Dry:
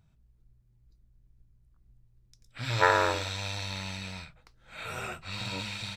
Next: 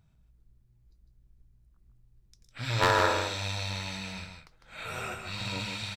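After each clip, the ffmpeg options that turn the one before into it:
-af "aeval=exprs='0.211*(abs(mod(val(0)/0.211+3,4)-2)-1)':c=same,aecho=1:1:153:0.501"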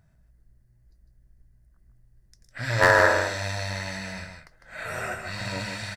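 -af "superequalizer=8b=2:11b=2.51:12b=0.631:13b=0.447:16b=1.41,volume=3dB"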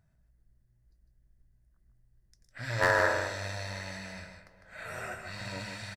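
-filter_complex "[0:a]asplit=2[a][b];[b]adelay=411,lowpass=f=2.1k:p=1,volume=-19dB,asplit=2[c][d];[d]adelay=411,lowpass=f=2.1k:p=1,volume=0.48,asplit=2[e][f];[f]adelay=411,lowpass=f=2.1k:p=1,volume=0.48,asplit=2[g][h];[h]adelay=411,lowpass=f=2.1k:p=1,volume=0.48[i];[a][c][e][g][i]amix=inputs=5:normalize=0,volume=-7.5dB"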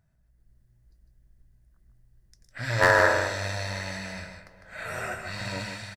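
-af "dynaudnorm=f=110:g=7:m=6dB"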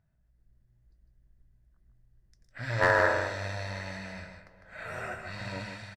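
-af "highshelf=f=5.3k:g=-11.5,volume=-3.5dB"

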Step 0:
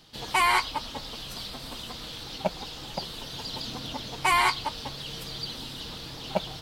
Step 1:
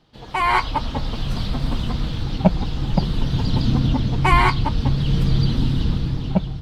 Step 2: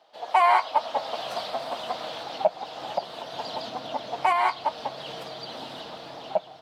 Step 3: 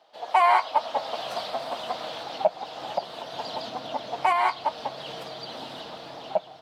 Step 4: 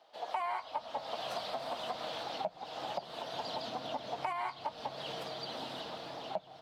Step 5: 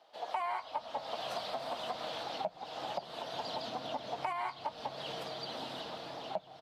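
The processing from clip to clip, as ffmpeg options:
-af "lowpass=f=1.2k:p=1,asubboost=boost=7:cutoff=220,dynaudnorm=f=110:g=9:m=13dB"
-af "alimiter=limit=-13.5dB:level=0:latency=1:release=485,highpass=f=660:t=q:w=4.9,volume=-1.5dB"
-af anull
-filter_complex "[0:a]acrossover=split=200[a][b];[b]acompressor=threshold=-31dB:ratio=6[c];[a][c]amix=inputs=2:normalize=0,volume=-3.5dB"
-af "aresample=32000,aresample=44100"

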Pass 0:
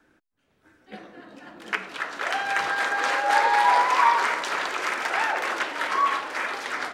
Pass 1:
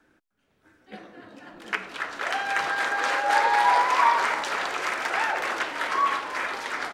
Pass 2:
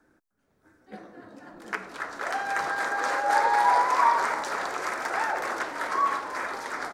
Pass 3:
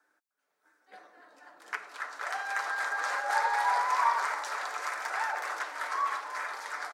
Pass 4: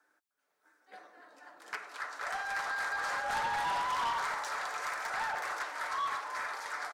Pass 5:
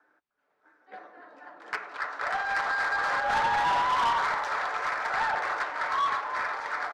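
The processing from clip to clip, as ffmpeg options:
-filter_complex "[0:a]asplit=6[a][b][c][d][e][f];[b]adelay=304,afreqshift=-94,volume=-17dB[g];[c]adelay=608,afreqshift=-188,volume=-21.7dB[h];[d]adelay=912,afreqshift=-282,volume=-26.5dB[i];[e]adelay=1216,afreqshift=-376,volume=-31.2dB[j];[f]adelay=1520,afreqshift=-470,volume=-35.9dB[k];[a][g][h][i][j][k]amix=inputs=6:normalize=0,volume=-1dB"
-af "equalizer=f=2.9k:w=1.5:g=-12"
-af "highpass=770,aecho=1:1:6.8:0.31,volume=-3.5dB"
-af "asoftclip=type=tanh:threshold=-29dB"
-af "adynamicsmooth=sensitivity=3.5:basefreq=2.5k,volume=8dB"

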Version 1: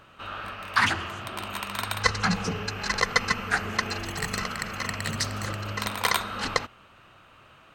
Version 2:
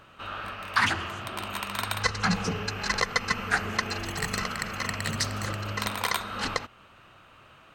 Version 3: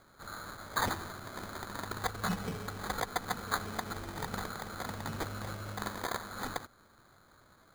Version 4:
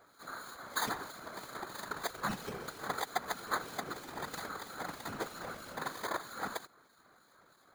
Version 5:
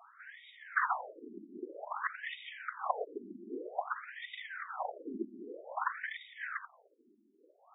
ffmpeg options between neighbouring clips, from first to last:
-af "alimiter=limit=-10dB:level=0:latency=1:release=255"
-af "acrusher=samples=16:mix=1:aa=0.000001,volume=-8dB"
-filter_complex "[0:a]highpass=240,acrossover=split=2500[a][b];[a]aeval=exprs='val(0)*(1-0.5/2+0.5/2*cos(2*PI*3.1*n/s))':c=same[c];[b]aeval=exprs='val(0)*(1-0.5/2-0.5/2*cos(2*PI*3.1*n/s))':c=same[d];[c][d]amix=inputs=2:normalize=0,afftfilt=real='hypot(re,im)*cos(2*PI*random(0))':imag='hypot(re,im)*sin(2*PI*random(1))':win_size=512:overlap=0.75,volume=7dB"
-af "afftfilt=real='re*between(b*sr/1024,270*pow(2700/270,0.5+0.5*sin(2*PI*0.52*pts/sr))/1.41,270*pow(2700/270,0.5+0.5*sin(2*PI*0.52*pts/sr))*1.41)':imag='im*between(b*sr/1024,270*pow(2700/270,0.5+0.5*sin(2*PI*0.52*pts/sr))/1.41,270*pow(2700/270,0.5+0.5*sin(2*PI*0.52*pts/sr))*1.41)':win_size=1024:overlap=0.75,volume=7.5dB"

